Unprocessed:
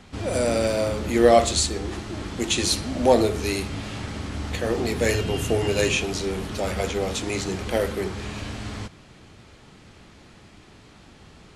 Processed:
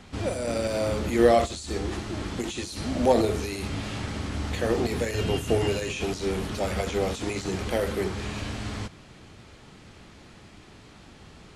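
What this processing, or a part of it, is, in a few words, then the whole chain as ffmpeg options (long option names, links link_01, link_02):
de-esser from a sidechain: -filter_complex "[0:a]asplit=2[link_01][link_02];[link_02]highpass=6100,apad=whole_len=509763[link_03];[link_01][link_03]sidechaincompress=threshold=-41dB:ratio=8:attack=2.5:release=27"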